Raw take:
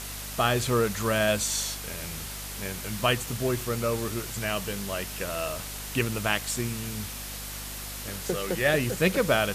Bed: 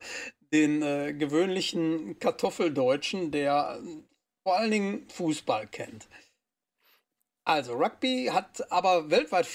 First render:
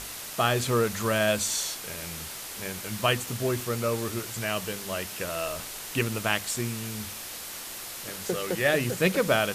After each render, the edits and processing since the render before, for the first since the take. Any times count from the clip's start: hum notches 50/100/150/200/250 Hz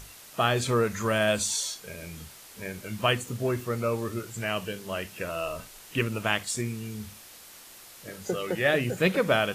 noise print and reduce 10 dB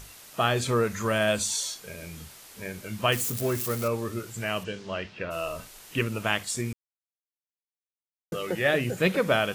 3.12–3.88 s: zero-crossing glitches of -25 dBFS; 4.63–5.30 s: low-pass 7.5 kHz -> 3.9 kHz 24 dB/octave; 6.73–8.32 s: mute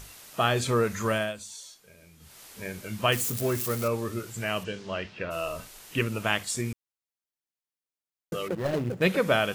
1.11–2.42 s: dip -14 dB, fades 0.23 s; 8.48–9.02 s: median filter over 41 samples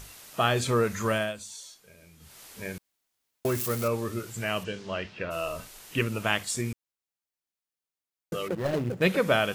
2.78–3.45 s: room tone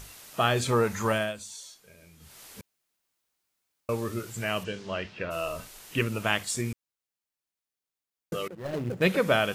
0.72–1.13 s: peaking EQ 860 Hz +11 dB 0.27 oct; 2.61–3.89 s: room tone; 8.48–8.96 s: fade in, from -17 dB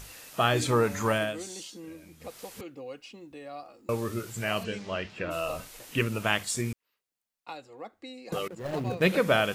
add bed -16 dB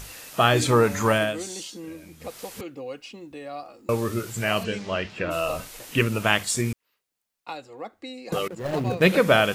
trim +5.5 dB

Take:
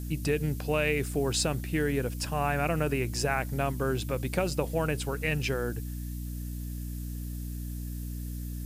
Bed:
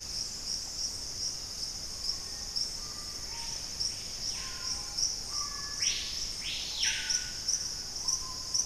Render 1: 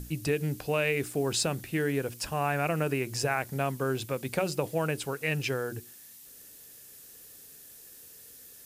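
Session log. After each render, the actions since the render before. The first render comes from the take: hum notches 60/120/180/240/300/360 Hz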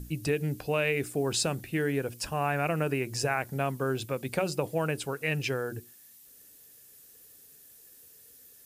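noise reduction 6 dB, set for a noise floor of -51 dBFS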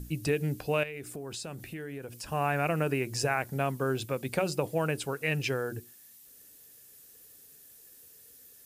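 0.83–2.29 s: compression 4:1, threshold -38 dBFS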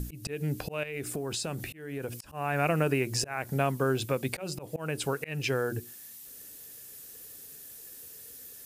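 slow attack 328 ms; in parallel at +2.5 dB: compression, threshold -39 dBFS, peak gain reduction 13.5 dB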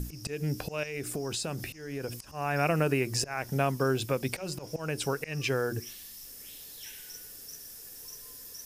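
add bed -17.5 dB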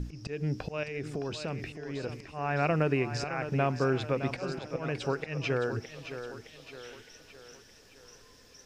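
distance through air 160 m; thinning echo 615 ms, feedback 51%, high-pass 180 Hz, level -9.5 dB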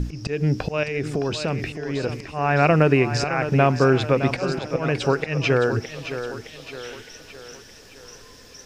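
trim +10.5 dB

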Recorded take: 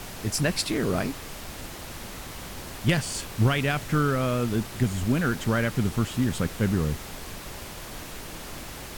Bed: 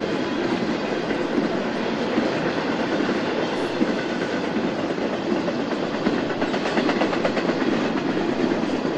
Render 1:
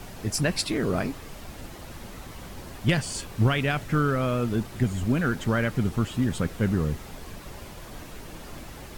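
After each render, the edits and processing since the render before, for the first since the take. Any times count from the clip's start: noise reduction 7 dB, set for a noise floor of -40 dBFS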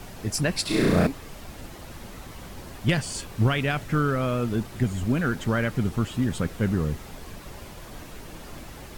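0.62–1.07 s: flutter echo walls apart 5.8 m, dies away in 1.5 s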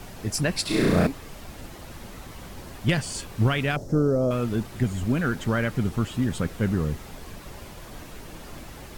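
3.76–4.31 s: FFT filter 140 Hz 0 dB, 560 Hz +7 dB, 810 Hz -2 dB, 2.4 kHz -26 dB, 3.7 kHz -15 dB, 5.6 kHz +1 dB, 9.5 kHz -8 dB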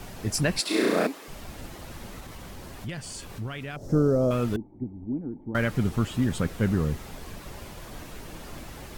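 0.60–1.28 s: high-pass 260 Hz 24 dB/octave; 2.20–3.84 s: compression 2.5:1, threshold -37 dBFS; 4.56–5.55 s: cascade formant filter u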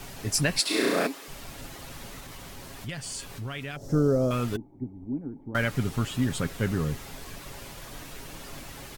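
tilt shelf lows -3 dB, about 1.4 kHz; comb 7.3 ms, depth 31%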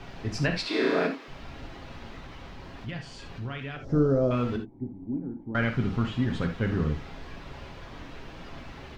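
distance through air 230 m; gated-style reverb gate 100 ms flat, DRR 4.5 dB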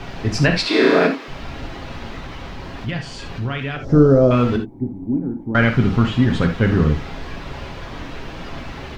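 trim +11 dB; peak limiter -2 dBFS, peak gain reduction 1 dB

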